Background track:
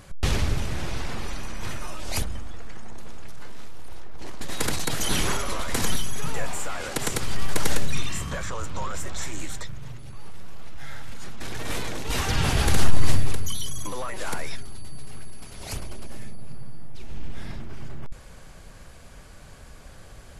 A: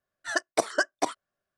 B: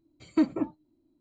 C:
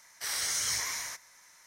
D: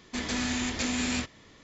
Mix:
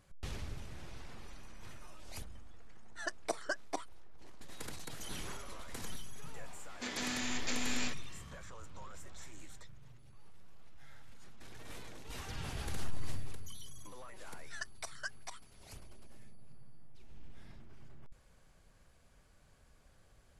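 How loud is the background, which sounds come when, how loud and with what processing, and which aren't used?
background track −19 dB
0:02.71: mix in A −12 dB
0:06.68: mix in D −6 dB + high-pass filter 330 Hz 6 dB per octave
0:14.25: mix in A −13 dB + high-pass filter 1,400 Hz
not used: B, C

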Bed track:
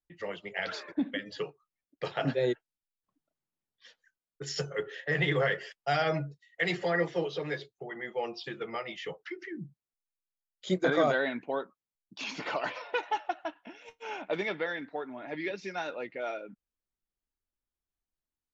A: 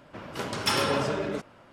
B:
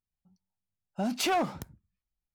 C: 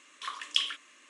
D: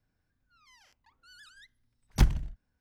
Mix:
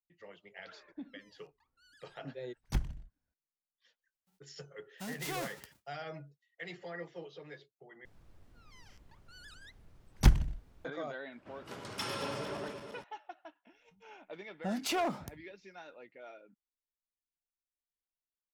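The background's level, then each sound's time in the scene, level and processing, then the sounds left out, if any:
bed track −15 dB
0:00.54: mix in D −10 dB
0:04.02: mix in B −12.5 dB + spectral envelope flattened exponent 0.3
0:08.05: overwrite with D + background noise brown −57 dBFS
0:11.32: mix in A −13 dB + feedback delay that plays each chunk backwards 114 ms, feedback 75%, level −8 dB
0:13.66: mix in B −5 dB + pitch modulation by a square or saw wave saw down 3.6 Hz, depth 100 cents
not used: C

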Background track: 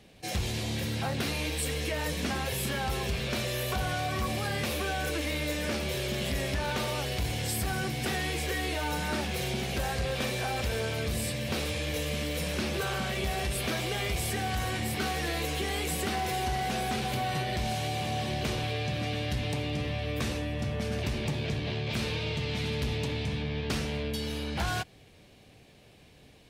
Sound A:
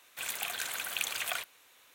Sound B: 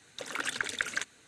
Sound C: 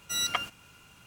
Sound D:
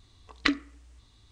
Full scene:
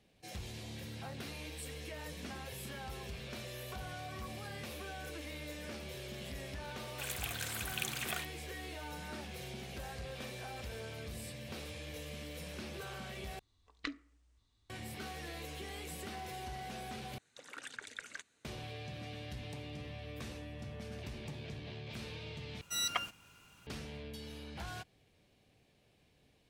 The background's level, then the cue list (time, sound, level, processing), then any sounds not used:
background track −13.5 dB
0:06.81: mix in A −5 dB
0:13.39: overwrite with D −16 dB
0:17.18: overwrite with B −14 dB
0:22.61: overwrite with C −5.5 dB

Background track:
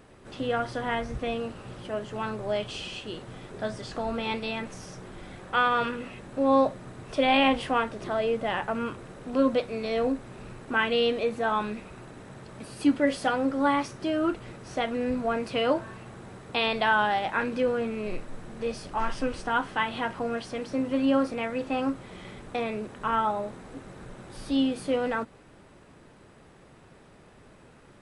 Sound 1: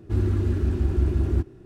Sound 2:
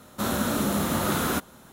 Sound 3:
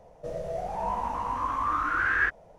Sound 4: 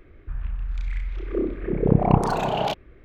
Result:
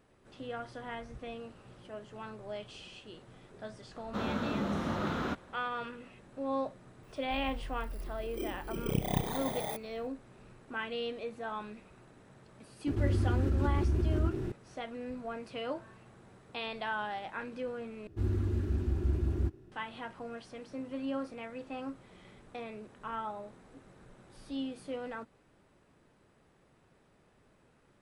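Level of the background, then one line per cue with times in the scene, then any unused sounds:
background track −12.5 dB
0:03.95: mix in 2 −7 dB + high-frequency loss of the air 210 metres
0:07.03: mix in 4 −13.5 dB + samples in bit-reversed order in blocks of 16 samples
0:12.87: mix in 1 −9 dB + envelope flattener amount 70%
0:18.07: overwrite with 1 −8.5 dB
not used: 3

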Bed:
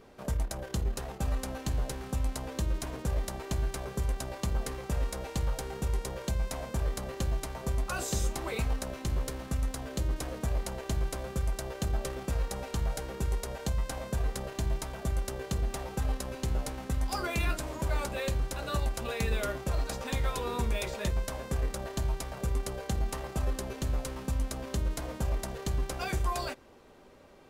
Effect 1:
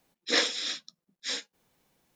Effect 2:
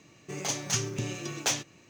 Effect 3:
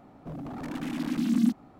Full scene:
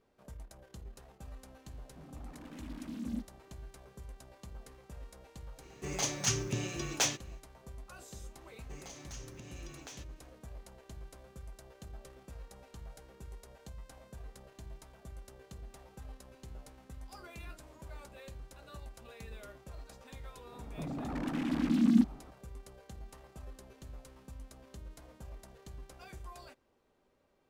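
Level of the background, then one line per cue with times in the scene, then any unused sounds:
bed −17.5 dB
0:01.70: mix in 3 −15 dB
0:05.54: mix in 2 −2 dB, fades 0.10 s
0:08.41: mix in 2 −12.5 dB + downward compressor 5 to 1, threshold −33 dBFS
0:20.52: mix in 3 −1 dB + high-shelf EQ 6,800 Hz −10.5 dB
not used: 1

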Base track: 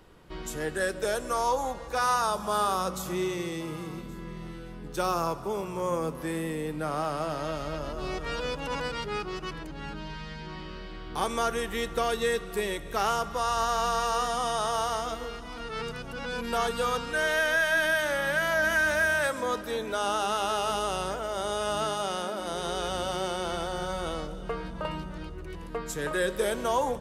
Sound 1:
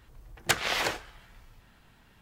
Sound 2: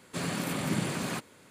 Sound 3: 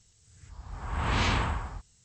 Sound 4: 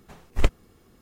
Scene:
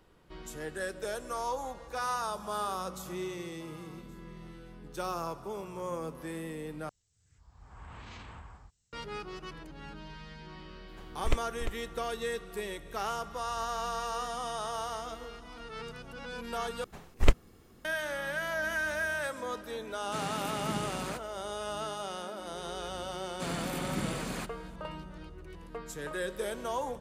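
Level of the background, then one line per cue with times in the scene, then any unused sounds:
base track −7.5 dB
0:06.89: overwrite with 3 −14 dB + brickwall limiter −24.5 dBFS
0:10.88: mix in 4 −7.5 dB + single-tap delay 348 ms −8.5 dB
0:16.84: overwrite with 4 −1 dB
0:19.98: mix in 2 −6 dB
0:23.26: mix in 2 −4 dB
not used: 1

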